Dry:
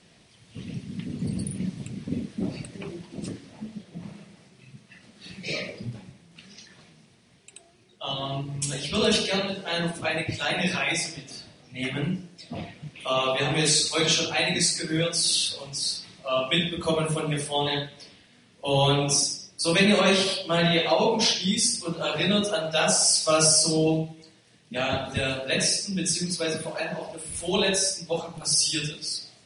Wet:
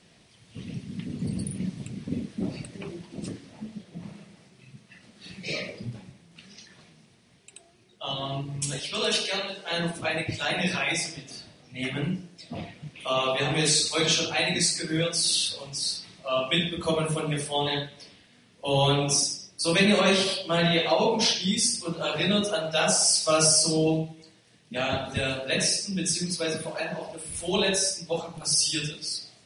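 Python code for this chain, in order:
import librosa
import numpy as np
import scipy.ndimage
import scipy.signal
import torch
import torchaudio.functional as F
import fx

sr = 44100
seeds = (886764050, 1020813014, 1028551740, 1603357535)

y = fx.highpass(x, sr, hz=630.0, slope=6, at=(8.79, 9.71))
y = y * librosa.db_to_amplitude(-1.0)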